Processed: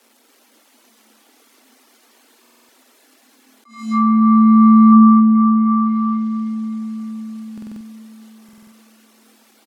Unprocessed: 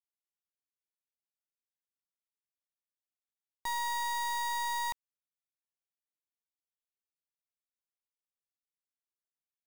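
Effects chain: zero-crossing glitches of -42.5 dBFS; word length cut 8-bit, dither none; tilt EQ -2 dB/octave; reverberation RT60 4.8 s, pre-delay 24 ms, DRR -3.5 dB; reverb removal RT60 0.76 s; feedback delay 551 ms, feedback 59%, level -20.5 dB; frequency shift +220 Hz; dynamic bell 1.2 kHz, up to +8 dB, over -45 dBFS, Q 4.5; low-pass that closes with the level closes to 1.2 kHz, closed at -15.5 dBFS; buffer glitch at 2.41/7.53/8.44 s, samples 2048, times 5; attacks held to a fixed rise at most 120 dB/s; trim +6 dB

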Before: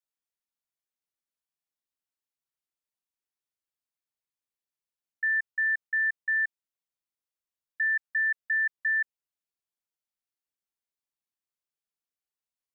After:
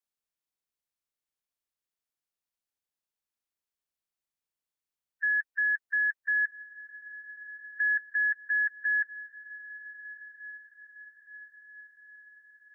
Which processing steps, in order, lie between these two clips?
coarse spectral quantiser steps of 30 dB; frequency shift -76 Hz; echo that smears into a reverb 1389 ms, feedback 53%, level -16 dB

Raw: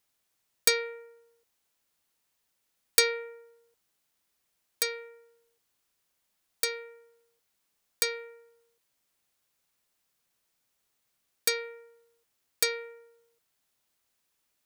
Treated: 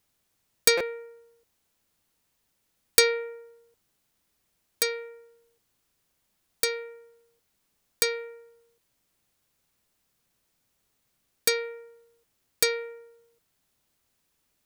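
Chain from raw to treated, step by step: bass shelf 350 Hz +9.5 dB; buffer glitch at 0.77 s, samples 256, times 5; trim +2.5 dB

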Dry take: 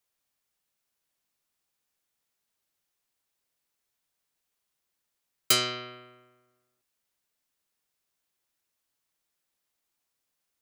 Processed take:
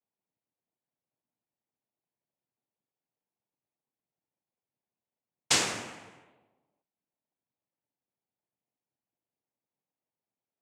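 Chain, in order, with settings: level-controlled noise filter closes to 610 Hz, open at -41.5 dBFS; noise-vocoded speech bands 4

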